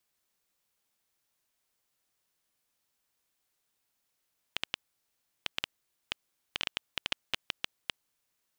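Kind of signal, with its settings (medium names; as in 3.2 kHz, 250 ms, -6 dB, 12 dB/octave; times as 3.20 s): random clicks 6 per s -11.5 dBFS 3.48 s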